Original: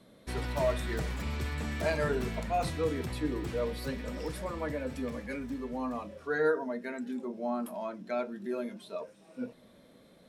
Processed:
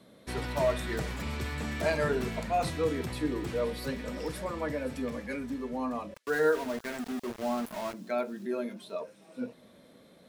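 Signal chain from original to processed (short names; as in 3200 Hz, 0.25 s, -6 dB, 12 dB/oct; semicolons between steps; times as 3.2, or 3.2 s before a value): HPF 87 Hz 6 dB/oct; 6.14–7.94 sample gate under -39 dBFS; thin delay 0.519 s, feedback 33%, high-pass 4300 Hz, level -13.5 dB; gain +2 dB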